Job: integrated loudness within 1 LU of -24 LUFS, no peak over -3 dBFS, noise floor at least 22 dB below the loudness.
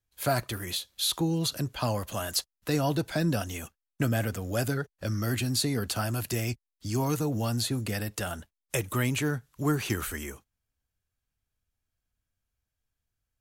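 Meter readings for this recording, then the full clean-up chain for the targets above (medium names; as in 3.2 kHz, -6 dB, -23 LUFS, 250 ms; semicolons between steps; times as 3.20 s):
loudness -30.0 LUFS; peak level -14.5 dBFS; loudness target -24.0 LUFS
-> trim +6 dB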